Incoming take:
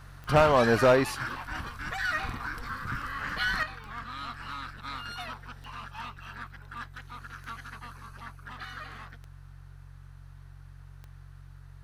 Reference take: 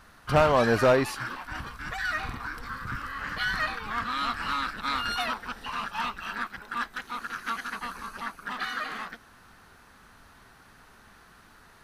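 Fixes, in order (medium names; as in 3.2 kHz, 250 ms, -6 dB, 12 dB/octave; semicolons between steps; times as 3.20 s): de-click; de-hum 45.8 Hz, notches 3; gain correction +9.5 dB, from 3.63 s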